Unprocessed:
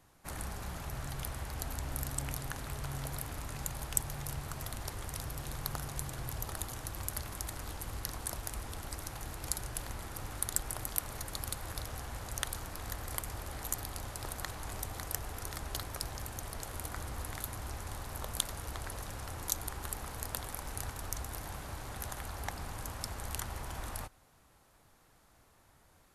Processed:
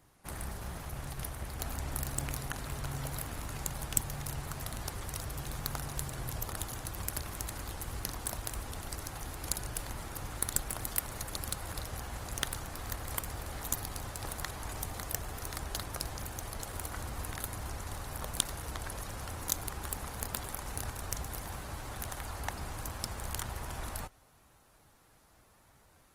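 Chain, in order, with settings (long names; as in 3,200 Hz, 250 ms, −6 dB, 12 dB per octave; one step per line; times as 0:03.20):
harmonic generator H 2 −11 dB, 3 −43 dB, 4 −29 dB, 8 −20 dB, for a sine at −5.5 dBFS
level +1.5 dB
Opus 20 kbit/s 48,000 Hz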